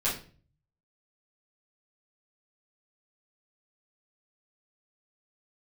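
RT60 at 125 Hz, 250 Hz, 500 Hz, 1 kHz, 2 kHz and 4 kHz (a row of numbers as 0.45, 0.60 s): 0.90, 0.55, 0.45, 0.35, 0.35, 0.35 s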